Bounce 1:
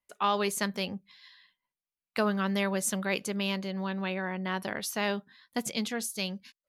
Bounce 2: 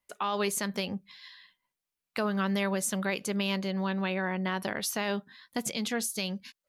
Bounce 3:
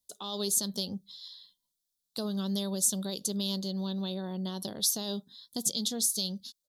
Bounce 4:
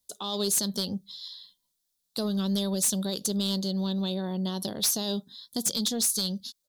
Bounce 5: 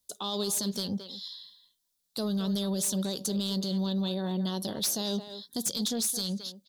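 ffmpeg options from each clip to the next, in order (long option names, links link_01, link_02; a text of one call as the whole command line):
ffmpeg -i in.wav -filter_complex "[0:a]asplit=2[link_01][link_02];[link_02]acompressor=threshold=-37dB:ratio=6,volume=-2.5dB[link_03];[link_01][link_03]amix=inputs=2:normalize=0,alimiter=limit=-20dB:level=0:latency=1:release=87" out.wav
ffmpeg -i in.wav -af "firequalizer=gain_entry='entry(200,0);entry(2300,-27);entry(3500,8)':delay=0.05:min_phase=1,volume=-2dB" out.wav
ffmpeg -i in.wav -af "aeval=exprs='0.224*(cos(1*acos(clip(val(0)/0.224,-1,1)))-cos(1*PI/2))+0.1*(cos(5*acos(clip(val(0)/0.224,-1,1)))-cos(5*PI/2))':channel_layout=same,volume=-5dB" out.wav
ffmpeg -i in.wav -filter_complex "[0:a]asplit=2[link_01][link_02];[link_02]adelay=220,highpass=300,lowpass=3400,asoftclip=type=hard:threshold=-23.5dB,volume=-10dB[link_03];[link_01][link_03]amix=inputs=2:normalize=0,alimiter=limit=-23.5dB:level=0:latency=1:release=16" out.wav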